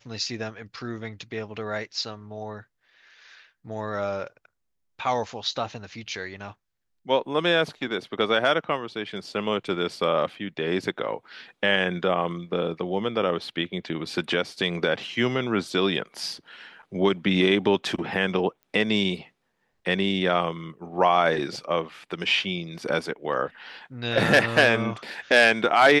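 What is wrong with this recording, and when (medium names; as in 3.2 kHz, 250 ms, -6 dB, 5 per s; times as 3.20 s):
18.63 s: pop -35 dBFS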